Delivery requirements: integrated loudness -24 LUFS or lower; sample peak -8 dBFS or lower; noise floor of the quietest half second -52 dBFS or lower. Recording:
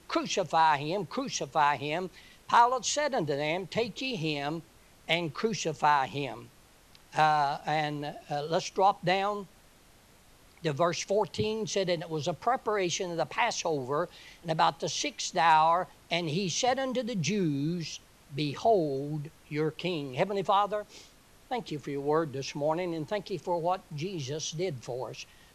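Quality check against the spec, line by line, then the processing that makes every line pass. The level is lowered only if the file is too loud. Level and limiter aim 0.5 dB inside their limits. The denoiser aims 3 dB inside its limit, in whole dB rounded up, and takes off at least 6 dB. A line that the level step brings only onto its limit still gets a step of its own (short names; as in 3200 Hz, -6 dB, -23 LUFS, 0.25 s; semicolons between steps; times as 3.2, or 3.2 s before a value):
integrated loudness -29.5 LUFS: OK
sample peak -11.0 dBFS: OK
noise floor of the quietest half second -58 dBFS: OK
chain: none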